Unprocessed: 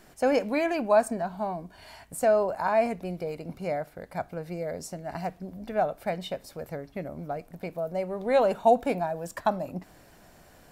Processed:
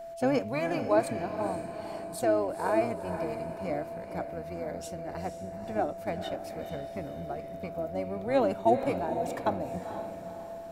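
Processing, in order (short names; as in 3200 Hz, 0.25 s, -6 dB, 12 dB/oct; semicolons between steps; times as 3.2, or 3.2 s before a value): harmoniser -12 st -7 dB; diffused feedback echo 0.478 s, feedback 46%, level -8.5 dB; whine 670 Hz -35 dBFS; gain -4.5 dB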